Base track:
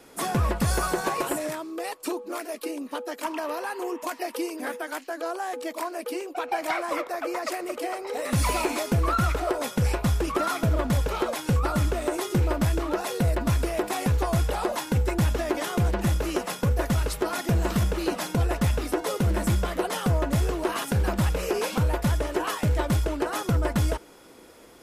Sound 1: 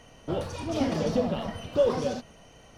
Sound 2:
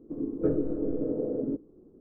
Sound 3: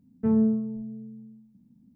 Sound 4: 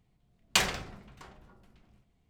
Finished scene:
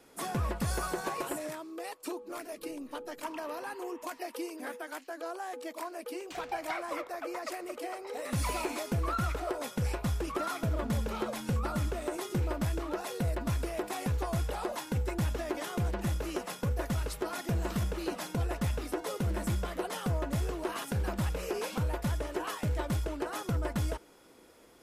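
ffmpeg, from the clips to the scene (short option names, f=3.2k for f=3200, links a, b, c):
-filter_complex "[0:a]volume=-8dB[a];[2:a]acompressor=threshold=-37dB:ratio=6:attack=3.2:release=140:knee=1:detection=peak[b];[4:a]alimiter=limit=-18.5dB:level=0:latency=1:release=11[c];[3:a]acompressor=threshold=-35dB:ratio=6:attack=3.2:release=140:knee=1:detection=peak[d];[b]atrim=end=2,asetpts=PTS-STARTPTS,volume=-16dB,afade=t=in:d=0.004:c=hsin,afade=t=out:st=1.996:d=0.004:c=hsin,adelay=2190[e];[c]atrim=end=2.29,asetpts=PTS-STARTPTS,volume=-18dB,afade=t=in:d=0.004:c=hsin,afade=t=out:st=2.286:d=0.004:c=hsin,adelay=5750[f];[d]atrim=end=1.95,asetpts=PTS-STARTPTS,volume=-6dB,afade=t=in:d=0.004:c=hsin,afade=t=out:st=1.946:d=0.004:c=hsin,adelay=10590[g];[a][e][f][g]amix=inputs=4:normalize=0"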